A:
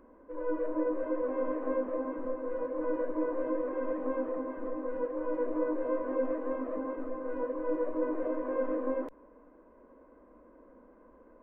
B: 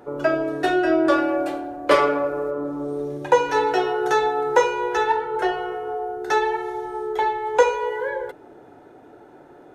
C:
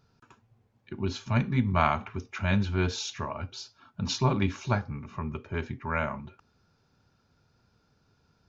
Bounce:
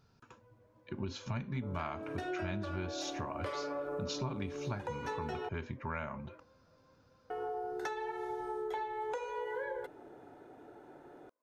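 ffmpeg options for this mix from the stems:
-filter_complex "[0:a]highpass=f=1200:p=1,alimiter=level_in=3.35:limit=0.0631:level=0:latency=1:release=423,volume=0.299,volume=0.266[s0];[1:a]alimiter=limit=0.178:level=0:latency=1:release=438,adelay=1550,volume=0.422,asplit=3[s1][s2][s3];[s1]atrim=end=5.49,asetpts=PTS-STARTPTS,afade=t=out:st=5.486:d=0.004:c=hsin[s4];[s2]atrim=start=5.49:end=7.3,asetpts=PTS-STARTPTS,volume=0[s5];[s3]atrim=start=7.3,asetpts=PTS-STARTPTS,afade=t=in:d=0.004:c=hsin[s6];[s4][s5][s6]concat=n=3:v=0:a=1[s7];[2:a]volume=0.841,asplit=2[s8][s9];[s9]apad=whole_len=503765[s10];[s0][s10]sidechaingate=range=0.251:threshold=0.00126:ratio=16:detection=peak[s11];[s11][s7][s8]amix=inputs=3:normalize=0,acompressor=threshold=0.0178:ratio=6"

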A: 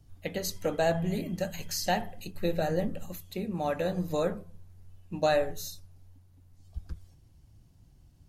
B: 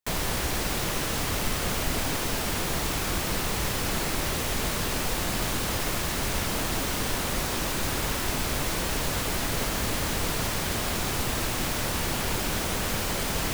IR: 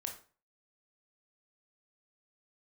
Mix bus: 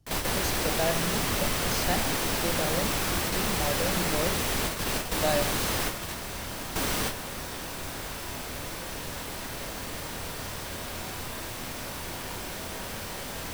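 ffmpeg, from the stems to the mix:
-filter_complex "[0:a]volume=0.75,asplit=2[s0][s1];[1:a]bandreject=f=6800:w=23,volume=0.75,asplit=2[s2][s3];[s3]volume=0.668[s4];[s1]apad=whole_len=596872[s5];[s2][s5]sidechaingate=range=0.0224:threshold=0.00282:ratio=16:detection=peak[s6];[2:a]atrim=start_sample=2205[s7];[s4][s7]afir=irnorm=-1:irlink=0[s8];[s0][s6][s8]amix=inputs=3:normalize=0,lowshelf=f=140:g=-4"

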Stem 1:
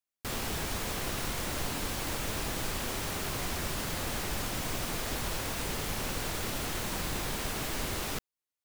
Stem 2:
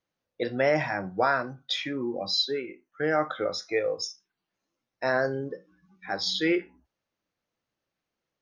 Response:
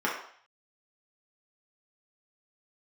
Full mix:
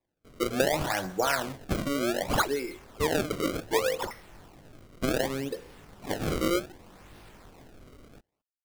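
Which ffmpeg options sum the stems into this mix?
-filter_complex "[0:a]lowpass=f=4000:w=0.5412,lowpass=f=4000:w=1.3066,flanger=delay=19.5:depth=4.5:speed=0.83,volume=0.224[s0];[1:a]acrossover=split=130|3000[s1][s2][s3];[s2]acompressor=threshold=0.0562:ratio=6[s4];[s1][s4][s3]amix=inputs=3:normalize=0,volume=1.06,asplit=2[s5][s6];[s6]volume=0.119[s7];[2:a]atrim=start_sample=2205[s8];[s7][s8]afir=irnorm=-1:irlink=0[s9];[s0][s5][s9]amix=inputs=3:normalize=0,acrusher=samples=29:mix=1:aa=0.000001:lfo=1:lforange=46.4:lforate=0.66"

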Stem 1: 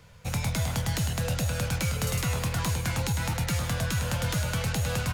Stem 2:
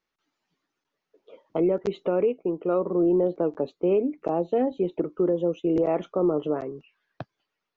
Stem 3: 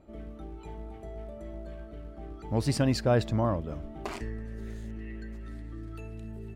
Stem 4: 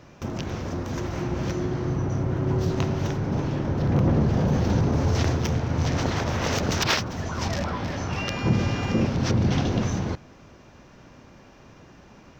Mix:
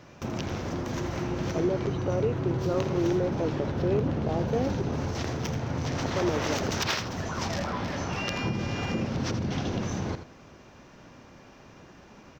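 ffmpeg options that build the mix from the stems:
-filter_complex "[0:a]lowpass=f=4400:w=0.5412,lowpass=f=4400:w=1.3066,acompressor=threshold=0.02:ratio=6,volume=0.447[s0];[1:a]volume=0.562,asplit=3[s1][s2][s3];[s1]atrim=end=4.82,asetpts=PTS-STARTPTS,afade=t=out:st=4.816:d=0.004:c=hsin[s4];[s2]atrim=start=4.82:end=6.1,asetpts=PTS-STARTPTS,volume=0[s5];[s3]atrim=start=6.1,asetpts=PTS-STARTPTS,afade=t=in:d=0.004:c=hsin[s6];[s4][s5][s6]concat=n=3:v=0:a=1[s7];[3:a]acompressor=threshold=0.0631:ratio=6,volume=0.944,asplit=2[s8][s9];[s9]volume=0.299,aecho=0:1:82:1[s10];[s0][s7][s8][s10]amix=inputs=4:normalize=0,lowshelf=f=130:g=-5"

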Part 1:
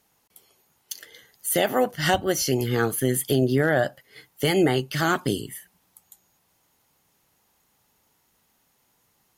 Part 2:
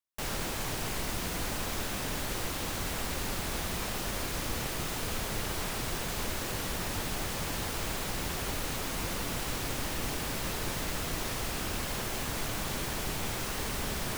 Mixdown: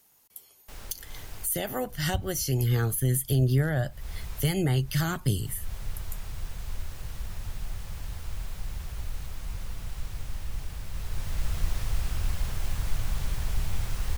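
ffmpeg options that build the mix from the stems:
-filter_complex "[0:a]crystalizer=i=1.5:c=0,volume=0.75,asplit=2[s0][s1];[1:a]adelay=500,volume=0.501,afade=t=in:st=10.9:d=0.67:silence=0.473151[s2];[s1]apad=whole_len=647358[s3];[s2][s3]sidechaincompress=threshold=0.0282:ratio=8:attack=11:release=274[s4];[s0][s4]amix=inputs=2:normalize=0,acrossover=split=300[s5][s6];[s6]acompressor=threshold=0.0178:ratio=2[s7];[s5][s7]amix=inputs=2:normalize=0,asubboost=boost=11:cutoff=86"

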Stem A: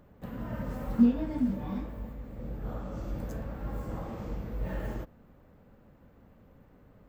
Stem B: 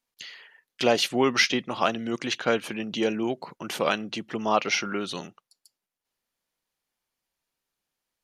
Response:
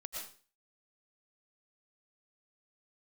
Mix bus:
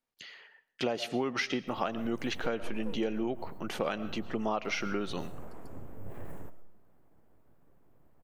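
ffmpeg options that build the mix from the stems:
-filter_complex "[0:a]highshelf=f=6700:t=q:w=3:g=12,aeval=exprs='abs(val(0))':c=same,adelay=1450,volume=0.398,asplit=2[s0][s1];[s1]volume=0.355[s2];[1:a]bandreject=f=1000:w=19,volume=0.794,asplit=3[s3][s4][s5];[s4]volume=0.211[s6];[s5]apad=whole_len=376506[s7];[s0][s7]sidechaincompress=threshold=0.0224:ratio=8:attack=7.2:release=118[s8];[2:a]atrim=start_sample=2205[s9];[s2][s6]amix=inputs=2:normalize=0[s10];[s10][s9]afir=irnorm=-1:irlink=0[s11];[s8][s3][s11]amix=inputs=3:normalize=0,highshelf=f=2500:g=-10,acompressor=threshold=0.0447:ratio=12"

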